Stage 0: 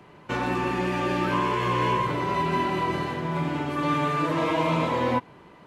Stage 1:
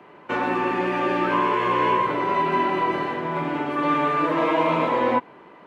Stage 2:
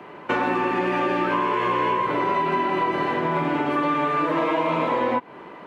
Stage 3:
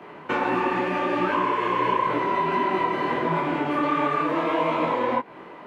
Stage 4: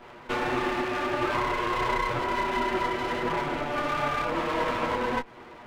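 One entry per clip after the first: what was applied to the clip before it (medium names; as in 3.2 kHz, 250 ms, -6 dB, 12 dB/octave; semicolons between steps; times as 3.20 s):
three-band isolator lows -17 dB, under 220 Hz, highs -13 dB, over 3 kHz; trim +4.5 dB
compression, threshold -26 dBFS, peak gain reduction 9.5 dB; trim +6.5 dB
detune thickener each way 52 cents; trim +2.5 dB
comb filter that takes the minimum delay 8.3 ms; trim -2.5 dB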